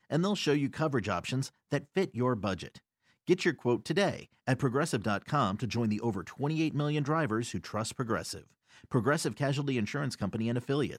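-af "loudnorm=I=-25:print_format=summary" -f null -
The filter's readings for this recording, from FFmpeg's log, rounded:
Input Integrated:    -31.7 LUFS
Input True Peak:     -13.1 dBTP
Input LRA:             1.7 LU
Input Threshold:     -42.0 LUFS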